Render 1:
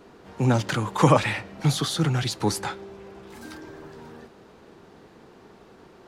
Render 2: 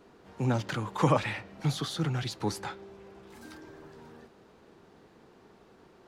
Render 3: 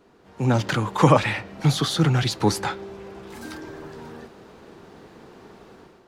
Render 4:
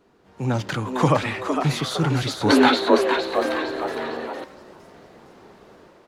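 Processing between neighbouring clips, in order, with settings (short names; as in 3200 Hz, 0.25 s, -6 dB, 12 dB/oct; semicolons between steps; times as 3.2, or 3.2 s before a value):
dynamic EQ 9400 Hz, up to -5 dB, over -49 dBFS, Q 0.83; gain -7 dB
AGC gain up to 11 dB
frequency-shifting echo 0.459 s, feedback 46%, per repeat +130 Hz, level -6 dB; spectral gain 2.49–4.44, 220–4500 Hz +12 dB; gain -3 dB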